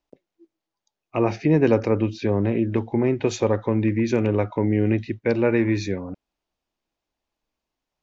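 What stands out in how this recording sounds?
background noise floor −86 dBFS
spectral slope −6.5 dB per octave

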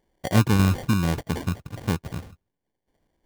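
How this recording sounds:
phaser sweep stages 4, 1.1 Hz, lowest notch 530–1,600 Hz
tremolo saw down 3.4 Hz, depth 40%
aliases and images of a low sample rate 1,300 Hz, jitter 0%

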